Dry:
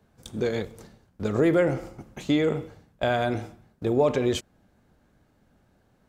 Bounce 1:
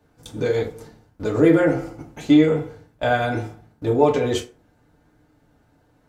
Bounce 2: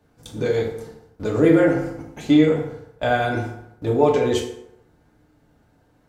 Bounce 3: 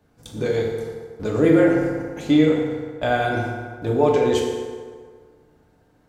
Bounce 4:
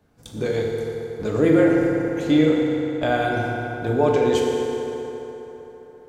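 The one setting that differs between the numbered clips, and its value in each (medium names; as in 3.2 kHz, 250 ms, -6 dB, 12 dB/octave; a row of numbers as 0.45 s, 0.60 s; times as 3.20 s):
FDN reverb, RT60: 0.36 s, 0.8 s, 1.8 s, 3.9 s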